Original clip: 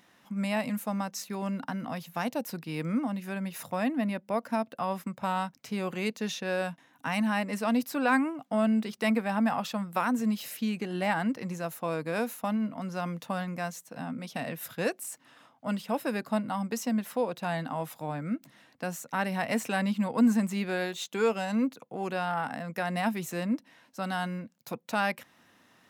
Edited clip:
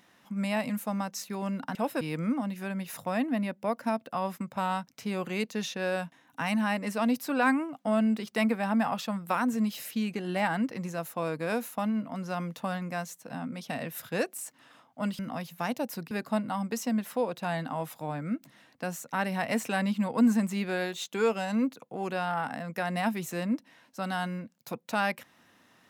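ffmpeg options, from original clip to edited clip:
ffmpeg -i in.wav -filter_complex "[0:a]asplit=5[link_01][link_02][link_03][link_04][link_05];[link_01]atrim=end=1.752[link_06];[link_02]atrim=start=15.848:end=16.112[link_07];[link_03]atrim=start=2.668:end=15.852[link_08];[link_04]atrim=start=1.748:end=2.672[link_09];[link_05]atrim=start=16.108[link_10];[link_06][link_07]acrossfade=duration=0.004:curve1=hsin:curve2=hsin[link_11];[link_11][link_08]acrossfade=duration=0.004:curve1=hsin:curve2=hsin[link_12];[link_12][link_09]acrossfade=duration=0.004:curve1=hsin:curve2=hsin[link_13];[link_13][link_10]acrossfade=duration=0.004:curve1=hsin:curve2=hsin" out.wav

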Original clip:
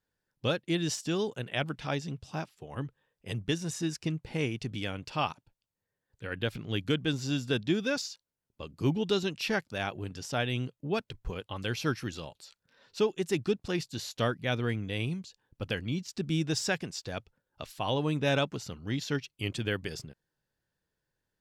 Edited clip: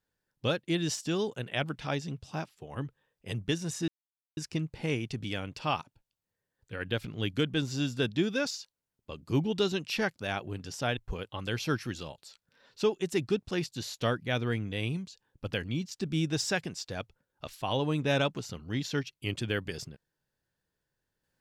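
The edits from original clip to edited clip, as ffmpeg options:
ffmpeg -i in.wav -filter_complex "[0:a]asplit=3[link_01][link_02][link_03];[link_01]atrim=end=3.88,asetpts=PTS-STARTPTS,afade=type=out:start_time=3.876:duration=0.004:curve=hsin,apad=pad_dur=0.49[link_04];[link_02]atrim=start=3.88:end=10.482,asetpts=PTS-STARTPTS,afade=type=in:duration=0.004:curve=hsin[link_05];[link_03]atrim=start=11.138[link_06];[link_04][link_05]concat=n=2:v=0:a=1[link_07];[link_07][link_06]acrossfade=duration=0.004:curve1=hsin:curve2=hsin" out.wav

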